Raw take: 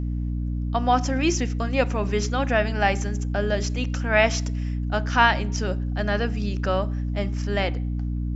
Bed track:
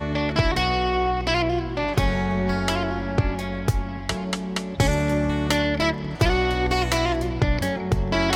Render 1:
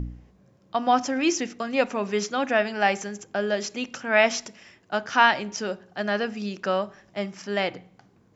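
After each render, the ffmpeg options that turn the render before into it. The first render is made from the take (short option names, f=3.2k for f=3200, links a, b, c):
-af "bandreject=f=60:t=h:w=4,bandreject=f=120:t=h:w=4,bandreject=f=180:t=h:w=4,bandreject=f=240:t=h:w=4,bandreject=f=300:t=h:w=4"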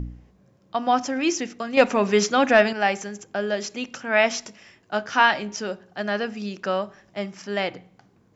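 -filter_complex "[0:a]asettb=1/sr,asplit=3[a][b][c];[a]atrim=end=1.774[d];[b]atrim=start=1.77:end=2.73,asetpts=PTS-STARTPTS,afade=t=in:d=0.004:c=qsin,afade=t=out:st=0.956:d=0.004:c=qsin,acontrast=77[e];[c]atrim=start=2.726[f];[d][e]acrossfade=d=0.004:c1=hsin:c2=qsin[g];[g][f]acrossfade=d=0.004:c1=qsin:c2=hsin,asettb=1/sr,asplit=3[h][i][j];[h]atrim=end=4.454[k];[i]atrim=start=4.45:end=5.6,asetpts=PTS-STARTPTS,afade=t=in:d=0.004:c=qsin,afade=t=out:st=1.146:d=0.004:c=qsin,asplit=2[l][m];[m]adelay=19,volume=-11dB[n];[l][n]amix=inputs=2:normalize=0,atrim=end_sample=50715[o];[j]atrim=start=5.596[p];[k][o]acrossfade=d=0.004:c1=hsin:c2=qsin[q];[q][p]acrossfade=d=0.004:c1=qsin:c2=hsin"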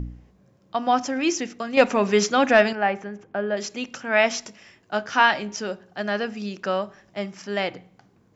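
-filter_complex "[0:a]asettb=1/sr,asplit=3[a][b][c];[a]atrim=end=2.754[d];[b]atrim=start=2.75:end=3.57,asetpts=PTS-STARTPTS,afade=t=in:d=0.004:c=qsin,afade=t=out:st=0.816:d=0.004:c=qsin,lowpass=2k[e];[c]atrim=start=3.566[f];[d][e]acrossfade=d=0.004:c1=hsin:c2=qsin[g];[g][f]acrossfade=d=0.004:c1=qsin:c2=hsin"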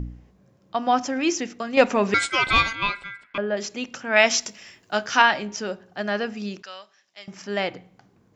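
-filter_complex "[0:a]asettb=1/sr,asplit=3[a][b][c];[a]atrim=end=2.144[d];[b]atrim=start=2.14:end=3.38,asetpts=PTS-STARTPTS,afade=t=in:d=0.004:c=qsin,afade=t=out:st=1.236:d=0.004:c=qsin,aeval=exprs='val(0)*sin(2*PI*1800*n/s)':c=same[e];[c]atrim=start=3.376[f];[d][e]acrossfade=d=0.004:c1=hsin:c2=qsin[g];[g][f]acrossfade=d=0.004:c1=qsin:c2=hsin,asettb=1/sr,asplit=3[h][i][j];[h]atrim=end=4.164[k];[i]atrim=start=4.16:end=5.22,asetpts=PTS-STARTPTS,afade=t=in:d=0.004:c=qsin,afade=t=out:st=1.056:d=0.004:c=qsin,highshelf=f=2.6k:g=9.5[l];[j]atrim=start=5.216[m];[k][l]acrossfade=d=0.004:c1=hsin:c2=qsin[n];[n][m]acrossfade=d=0.004:c1=qsin:c2=hsin,asettb=1/sr,asplit=3[o][p][q];[o]atrim=end=6.624[r];[p]atrim=start=6.62:end=7.28,asetpts=PTS-STARTPTS,afade=t=in:d=0.004:c=qsin,afade=t=out:st=0.656:d=0.004:c=qsin,bandpass=f=4.7k:t=q:w=1.1[s];[q]atrim=start=7.276[t];[r][s]acrossfade=d=0.004:c1=hsin:c2=qsin[u];[u][t]acrossfade=d=0.004:c1=qsin:c2=hsin"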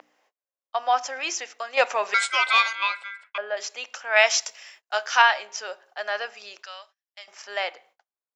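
-af "agate=range=-33dB:threshold=-50dB:ratio=16:detection=peak,highpass=f=600:w=0.5412,highpass=f=600:w=1.3066"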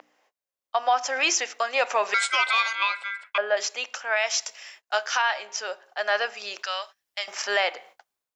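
-af "dynaudnorm=f=580:g=3:m=14dB,alimiter=limit=-12dB:level=0:latency=1:release=294"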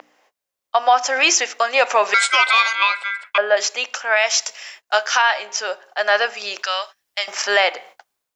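-af "volume=7.5dB"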